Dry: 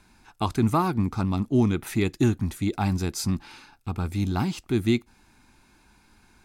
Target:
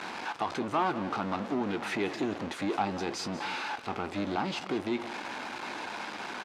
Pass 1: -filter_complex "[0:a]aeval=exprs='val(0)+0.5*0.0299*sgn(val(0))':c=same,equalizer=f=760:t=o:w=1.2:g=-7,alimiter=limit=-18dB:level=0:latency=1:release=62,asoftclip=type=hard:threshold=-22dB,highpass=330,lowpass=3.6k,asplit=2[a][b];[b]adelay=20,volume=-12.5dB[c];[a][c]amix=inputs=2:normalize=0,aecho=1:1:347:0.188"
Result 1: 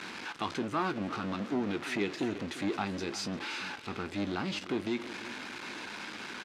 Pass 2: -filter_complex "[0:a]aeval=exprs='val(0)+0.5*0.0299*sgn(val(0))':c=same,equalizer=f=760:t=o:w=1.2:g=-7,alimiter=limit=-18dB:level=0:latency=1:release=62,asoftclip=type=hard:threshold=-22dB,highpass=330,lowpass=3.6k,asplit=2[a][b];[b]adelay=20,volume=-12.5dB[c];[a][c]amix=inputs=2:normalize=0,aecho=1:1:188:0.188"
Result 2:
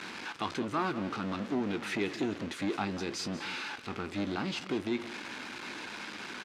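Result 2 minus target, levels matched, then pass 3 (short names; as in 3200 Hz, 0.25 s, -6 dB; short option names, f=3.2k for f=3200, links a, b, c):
1000 Hz band -4.0 dB
-filter_complex "[0:a]aeval=exprs='val(0)+0.5*0.0299*sgn(val(0))':c=same,equalizer=f=760:t=o:w=1.2:g=4,alimiter=limit=-18dB:level=0:latency=1:release=62,asoftclip=type=hard:threshold=-22dB,highpass=330,lowpass=3.6k,asplit=2[a][b];[b]adelay=20,volume=-12.5dB[c];[a][c]amix=inputs=2:normalize=0,aecho=1:1:188:0.188"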